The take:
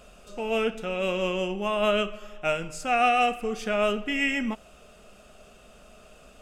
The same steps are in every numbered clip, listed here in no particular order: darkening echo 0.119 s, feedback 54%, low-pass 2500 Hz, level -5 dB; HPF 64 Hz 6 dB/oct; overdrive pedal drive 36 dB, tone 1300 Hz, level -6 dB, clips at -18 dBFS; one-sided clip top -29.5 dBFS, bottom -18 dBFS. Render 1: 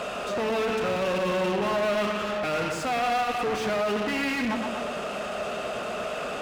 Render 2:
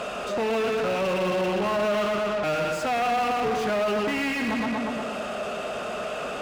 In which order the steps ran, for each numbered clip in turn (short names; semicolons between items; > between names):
overdrive pedal > darkening echo > one-sided clip > HPF; darkening echo > one-sided clip > overdrive pedal > HPF